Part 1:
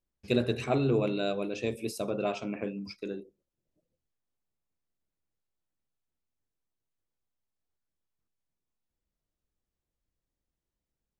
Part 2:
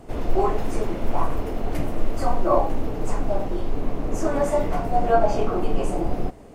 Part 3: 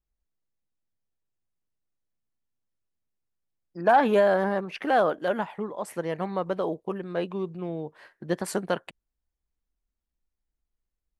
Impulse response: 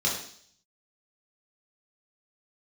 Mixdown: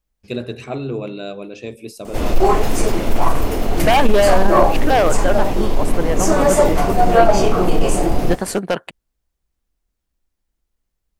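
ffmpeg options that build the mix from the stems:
-filter_complex "[0:a]volume=-5.5dB[link_01];[1:a]highshelf=frequency=2800:gain=11,adelay=2050,volume=1dB[link_02];[2:a]aeval=exprs='0.158*(abs(mod(val(0)/0.158+3,4)-2)-1)':channel_layout=same,volume=2dB[link_03];[link_01][link_02][link_03]amix=inputs=3:normalize=0,acontrast=74"

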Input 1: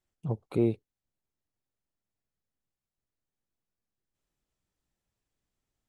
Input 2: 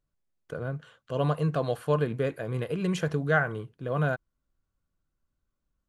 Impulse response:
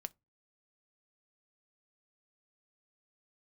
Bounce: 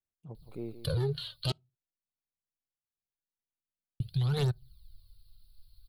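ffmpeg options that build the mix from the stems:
-filter_complex "[0:a]volume=-14.5dB,asplit=2[link_01][link_02];[link_02]volume=-12.5dB[link_03];[1:a]firequalizer=gain_entry='entry(120,0);entry(250,-30);entry(530,-20);entry(1800,-21);entry(4300,13);entry(6300,-29);entry(9900,2)':delay=0.05:min_phase=1,aeval=exprs='0.0708*sin(PI/2*4.47*val(0)/0.0708)':channel_layout=same,aphaser=in_gain=1:out_gain=1:delay=3.5:decay=0.59:speed=0.48:type=triangular,adelay=350,volume=-0.5dB,asplit=3[link_04][link_05][link_06];[link_04]atrim=end=1.52,asetpts=PTS-STARTPTS,afade=type=out:start_time=1.516:duration=0.004:curve=hsin[link_07];[link_05]atrim=start=1.52:end=4,asetpts=PTS-STARTPTS,volume=0[link_08];[link_06]atrim=start=4,asetpts=PTS-STARTPTS,afade=type=in:duration=0.004:curve=hsin[link_09];[link_07][link_08][link_09]concat=n=3:v=0:a=1,asplit=2[link_10][link_11];[link_11]volume=-9dB[link_12];[2:a]atrim=start_sample=2205[link_13];[link_12][link_13]afir=irnorm=-1:irlink=0[link_14];[link_03]aecho=0:1:170:1[link_15];[link_01][link_10][link_14][link_15]amix=inputs=4:normalize=0,acompressor=threshold=-26dB:ratio=10"

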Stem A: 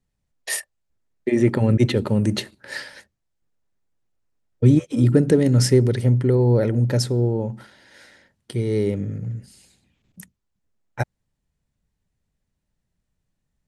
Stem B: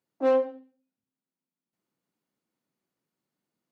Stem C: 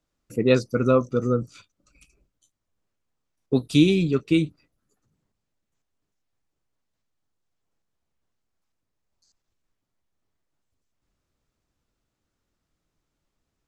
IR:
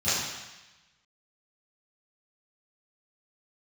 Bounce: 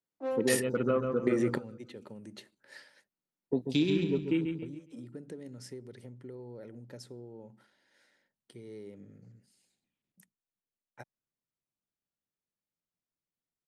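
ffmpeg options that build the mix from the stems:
-filter_complex "[0:a]acompressor=threshold=-21dB:ratio=4,volume=1.5dB[link_01];[1:a]volume=-11.5dB,asplit=2[link_02][link_03];[link_03]volume=-15dB[link_04];[2:a]afwtdn=0.0251,volume=-4.5dB,asplit=3[link_05][link_06][link_07];[link_06]volume=-11dB[link_08];[link_07]apad=whole_len=602896[link_09];[link_01][link_09]sidechaingate=range=-21dB:threshold=-48dB:ratio=16:detection=peak[link_10];[link_10][link_05]amix=inputs=2:normalize=0,highpass=180,acompressor=threshold=-26dB:ratio=2.5,volume=0dB[link_11];[link_04][link_08]amix=inputs=2:normalize=0,aecho=0:1:138|276|414|552|690:1|0.36|0.13|0.0467|0.0168[link_12];[link_02][link_11][link_12]amix=inputs=3:normalize=0"

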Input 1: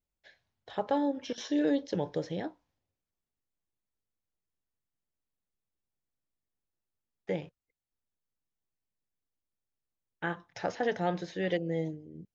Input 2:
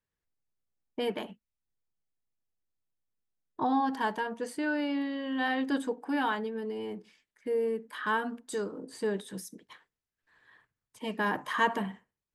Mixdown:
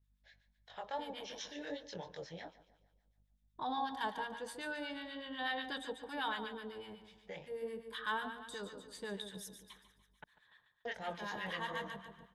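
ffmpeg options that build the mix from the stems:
ffmpeg -i stem1.wav -i stem2.wav -filter_complex "[0:a]lowshelf=frequency=440:gain=-8.5,aeval=exprs='val(0)+0.000398*(sin(2*PI*50*n/s)+sin(2*PI*2*50*n/s)/2+sin(2*PI*3*50*n/s)/3+sin(2*PI*4*50*n/s)/4+sin(2*PI*5*50*n/s)/5)':channel_layout=same,flanger=delay=20:depth=4.7:speed=2.8,volume=1dB,asplit=3[link_01][link_02][link_03];[link_01]atrim=end=10.24,asetpts=PTS-STARTPTS,afade=type=out:start_time=10.236:duration=0.004:curve=hsin[link_04];[link_02]atrim=start=10.24:end=10.85,asetpts=PTS-STARTPTS,volume=0[link_05];[link_03]atrim=start=10.85,asetpts=PTS-STARTPTS,afade=type=in:duration=0.004:curve=hsin[link_06];[link_04][link_05][link_06]concat=n=3:v=0:a=1,asplit=3[link_07][link_08][link_09];[link_08]volume=-16.5dB[link_10];[1:a]equalizer=frequency=3600:width=6.3:gain=14,volume=-3.5dB,asplit=2[link_11][link_12];[link_12]volume=-9.5dB[link_13];[link_09]apad=whole_len=544503[link_14];[link_11][link_14]sidechaincompress=threshold=-43dB:ratio=5:attack=27:release=409[link_15];[link_10][link_13]amix=inputs=2:normalize=0,aecho=0:1:145|290|435|580|725|870|1015:1|0.47|0.221|0.104|0.0488|0.0229|0.0108[link_16];[link_07][link_15][link_16]amix=inputs=3:normalize=0,equalizer=frequency=310:width_type=o:width=1.1:gain=-10.5,acrossover=split=980[link_17][link_18];[link_17]aeval=exprs='val(0)*(1-0.7/2+0.7/2*cos(2*PI*8.1*n/s))':channel_layout=same[link_19];[link_18]aeval=exprs='val(0)*(1-0.7/2-0.7/2*cos(2*PI*8.1*n/s))':channel_layout=same[link_20];[link_19][link_20]amix=inputs=2:normalize=0" out.wav

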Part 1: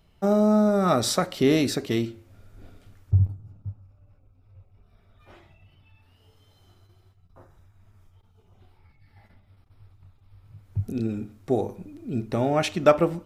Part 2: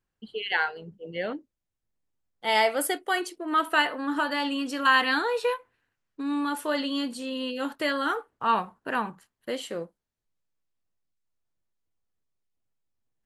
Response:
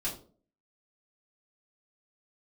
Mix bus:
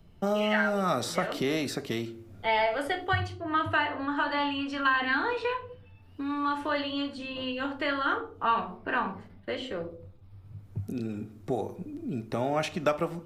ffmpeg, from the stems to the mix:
-filter_complex "[0:a]lowshelf=frequency=490:gain=11,volume=-3dB,asplit=2[link_01][link_02];[link_02]volume=-19.5dB[link_03];[1:a]lowpass=3200,volume=-2.5dB,asplit=2[link_04][link_05];[link_05]volume=-3dB[link_06];[2:a]atrim=start_sample=2205[link_07];[link_03][link_06]amix=inputs=2:normalize=0[link_08];[link_08][link_07]afir=irnorm=-1:irlink=0[link_09];[link_01][link_04][link_09]amix=inputs=3:normalize=0,acrossover=split=110|680|2200[link_10][link_11][link_12][link_13];[link_10]acompressor=threshold=-55dB:ratio=4[link_14];[link_11]acompressor=threshold=-34dB:ratio=4[link_15];[link_12]acompressor=threshold=-26dB:ratio=4[link_16];[link_13]acompressor=threshold=-36dB:ratio=4[link_17];[link_14][link_15][link_16][link_17]amix=inputs=4:normalize=0"

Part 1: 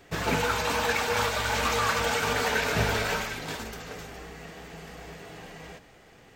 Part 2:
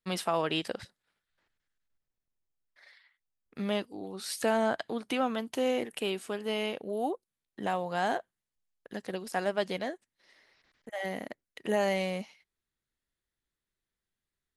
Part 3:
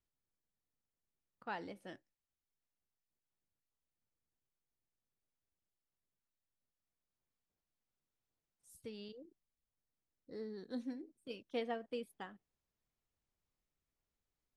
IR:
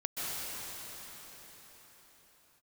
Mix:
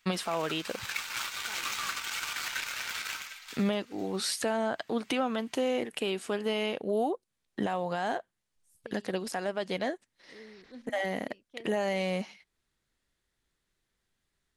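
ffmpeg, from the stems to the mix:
-filter_complex "[0:a]highpass=frequency=1300:width=0.5412,highpass=frequency=1300:width=1.3066,equalizer=frequency=1700:width=3.9:gain=-5.5,aeval=exprs='0.15*(cos(1*acos(clip(val(0)/0.15,-1,1)))-cos(1*PI/2))+0.015*(cos(7*acos(clip(val(0)/0.15,-1,1)))-cos(7*PI/2))':channel_layout=same,volume=2dB[link_01];[1:a]lowpass=10000,acontrast=73,volume=2.5dB[link_02];[2:a]volume=-5.5dB[link_03];[link_01][link_02][link_03]amix=inputs=3:normalize=0,alimiter=limit=-20.5dB:level=0:latency=1:release=479"

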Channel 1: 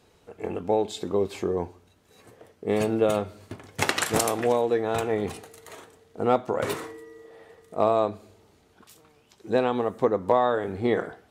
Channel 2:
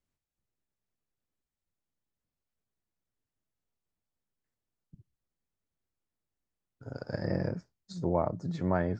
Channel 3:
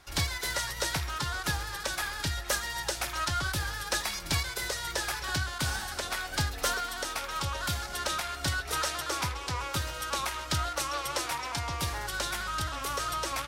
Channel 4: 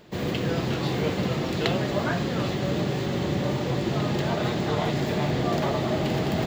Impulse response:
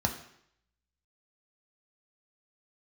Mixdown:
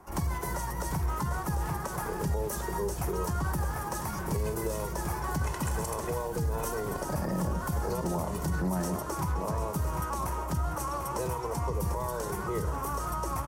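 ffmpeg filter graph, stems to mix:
-filter_complex "[0:a]aecho=1:1:2:0.98,adelay=1650,volume=-11dB,asplit=2[link_01][link_02];[link_02]volume=-16.5dB[link_03];[1:a]highpass=330,volume=0dB,asplit=3[link_04][link_05][link_06];[link_05]volume=-6dB[link_07];[link_06]volume=-4dB[link_08];[2:a]equalizer=frequency=3500:width_type=o:width=2.9:gain=-14,volume=2.5dB,asplit=3[link_09][link_10][link_11];[link_10]volume=-16dB[link_12];[link_11]volume=-7.5dB[link_13];[3:a]acrossover=split=570[link_14][link_15];[link_14]aeval=exprs='val(0)*(1-0.7/2+0.7/2*cos(2*PI*3.9*n/s))':channel_layout=same[link_16];[link_15]aeval=exprs='val(0)*(1-0.7/2-0.7/2*cos(2*PI*3.9*n/s))':channel_layout=same[link_17];[link_16][link_17]amix=inputs=2:normalize=0,asoftclip=type=tanh:threshold=-28.5dB,volume=-15.5dB[link_18];[4:a]atrim=start_sample=2205[link_19];[link_03][link_07][link_12]amix=inputs=3:normalize=0[link_20];[link_20][link_19]afir=irnorm=-1:irlink=0[link_21];[link_08][link_13]amix=inputs=2:normalize=0,aecho=0:1:745|1490|2235|2980|3725|4470:1|0.44|0.194|0.0852|0.0375|0.0165[link_22];[link_01][link_04][link_09][link_18][link_21][link_22]amix=inputs=6:normalize=0,equalizer=frequency=160:width_type=o:width=0.67:gain=7,equalizer=frequency=400:width_type=o:width=0.67:gain=6,equalizer=frequency=1000:width_type=o:width=0.67:gain=10,equalizer=frequency=4000:width_type=o:width=0.67:gain=-9,acrossover=split=220|3000[link_23][link_24][link_25];[link_24]acompressor=threshold=-32dB:ratio=6[link_26];[link_23][link_26][link_25]amix=inputs=3:normalize=0,alimiter=limit=-22dB:level=0:latency=1:release=34"

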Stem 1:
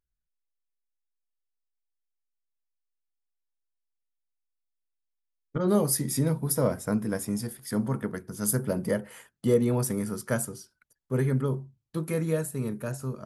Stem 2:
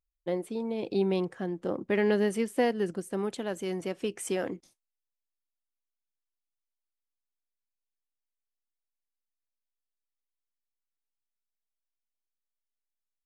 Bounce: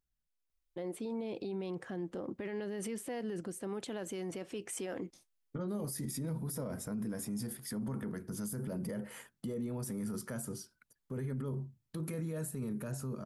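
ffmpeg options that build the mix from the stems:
ffmpeg -i stem1.wav -i stem2.wav -filter_complex "[0:a]equalizer=frequency=210:width=1.2:gain=5,alimiter=limit=-16dB:level=0:latency=1:release=277,volume=-1.5dB[link_01];[1:a]adelay=500,volume=0.5dB[link_02];[link_01][link_02]amix=inputs=2:normalize=0,alimiter=level_in=7.5dB:limit=-24dB:level=0:latency=1:release=37,volume=-7.5dB" out.wav

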